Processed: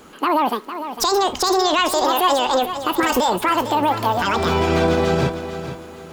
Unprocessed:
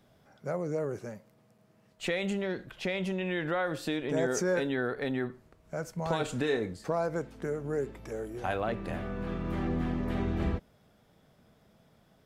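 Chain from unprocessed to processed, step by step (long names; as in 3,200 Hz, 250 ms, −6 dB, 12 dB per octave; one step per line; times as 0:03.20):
wrong playback speed 7.5 ips tape played at 15 ips
boost into a limiter +27 dB
feedback echo at a low word length 454 ms, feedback 35%, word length 7 bits, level −10.5 dB
level −8.5 dB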